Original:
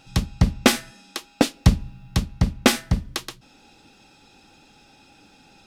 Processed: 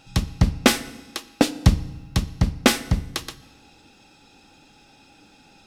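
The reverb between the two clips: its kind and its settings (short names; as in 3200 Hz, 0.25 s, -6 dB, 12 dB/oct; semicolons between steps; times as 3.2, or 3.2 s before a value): FDN reverb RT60 1.2 s, low-frequency decay 1.2×, high-frequency decay 0.85×, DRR 15 dB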